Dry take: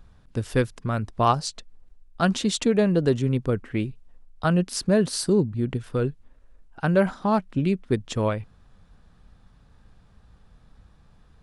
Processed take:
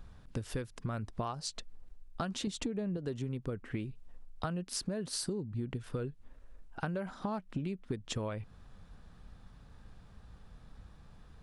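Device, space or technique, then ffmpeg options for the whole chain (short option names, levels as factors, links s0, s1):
serial compression, leveller first: -filter_complex "[0:a]asettb=1/sr,asplit=3[s0][s1][s2];[s0]atrim=end=2.474[s3];[s1]atrim=start=2.47:end=2.97,asetpts=PTS-STARTPTS,afade=t=in:d=0.004:c=qsin,afade=t=out:st=0.496:d=0.004:c=qsin,lowshelf=f=430:g=9.5[s4];[s2]atrim=start=2.966[s5];[s3][s4]acrossfade=d=0.004:c1=hsin:c2=qsin[s6];[s6][s5]acrossfade=d=0.004:c1=qsin:c2=hsin,acompressor=threshold=0.0708:ratio=2.5,acompressor=threshold=0.02:ratio=6"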